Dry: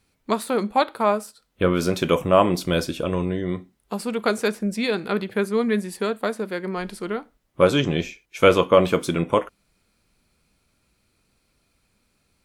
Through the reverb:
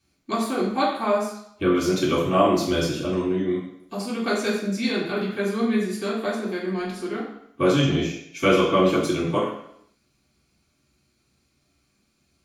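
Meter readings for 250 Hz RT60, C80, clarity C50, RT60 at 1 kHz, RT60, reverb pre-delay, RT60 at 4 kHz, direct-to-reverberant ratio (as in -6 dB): 0.75 s, 7.0 dB, 4.0 dB, 0.70 s, 0.70 s, 3 ms, 0.70 s, -6.5 dB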